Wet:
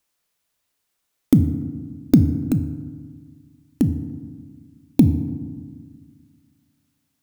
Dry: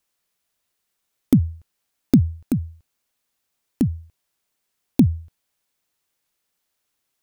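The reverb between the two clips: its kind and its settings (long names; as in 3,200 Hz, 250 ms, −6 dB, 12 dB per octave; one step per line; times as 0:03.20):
feedback delay network reverb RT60 1.6 s, low-frequency decay 1.35×, high-frequency decay 0.45×, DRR 9 dB
level +1 dB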